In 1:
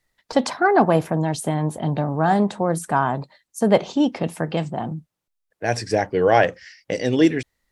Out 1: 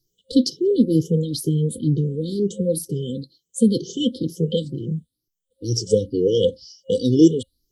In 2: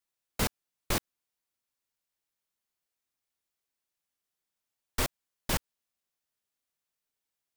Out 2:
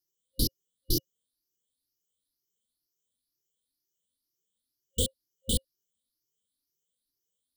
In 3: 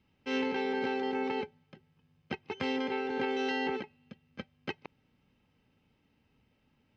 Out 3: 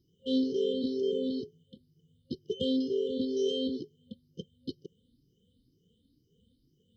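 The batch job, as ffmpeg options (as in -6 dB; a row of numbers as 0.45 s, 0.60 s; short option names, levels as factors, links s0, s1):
-af "afftfilt=real='re*pow(10,17/40*sin(2*PI*(0.75*log(max(b,1)*sr/1024/100)/log(2)-(2.1)*(pts-256)/sr)))':imag='im*pow(10,17/40*sin(2*PI*(0.75*log(max(b,1)*sr/1024/100)/log(2)-(2.1)*(pts-256)/sr)))':win_size=1024:overlap=0.75,afftfilt=real='re*(1-between(b*sr/4096,530,2900))':imag='im*(1-between(b*sr/4096,530,2900))':win_size=4096:overlap=0.75"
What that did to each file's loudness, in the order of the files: 0.0 LU, +2.0 LU, +2.0 LU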